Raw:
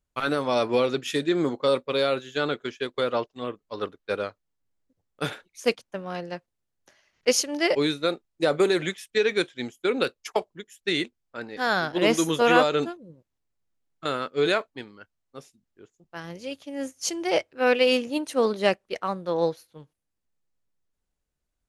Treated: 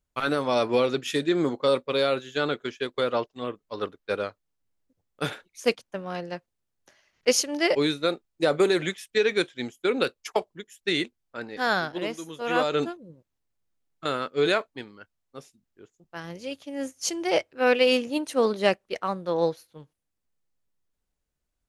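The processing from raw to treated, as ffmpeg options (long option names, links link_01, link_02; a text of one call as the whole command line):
ffmpeg -i in.wav -filter_complex "[0:a]asplit=3[link_01][link_02][link_03];[link_01]atrim=end=12.13,asetpts=PTS-STARTPTS,afade=type=out:start_time=11.72:duration=0.41:silence=0.188365[link_04];[link_02]atrim=start=12.13:end=12.4,asetpts=PTS-STARTPTS,volume=-14.5dB[link_05];[link_03]atrim=start=12.4,asetpts=PTS-STARTPTS,afade=type=in:duration=0.41:silence=0.188365[link_06];[link_04][link_05][link_06]concat=n=3:v=0:a=1" out.wav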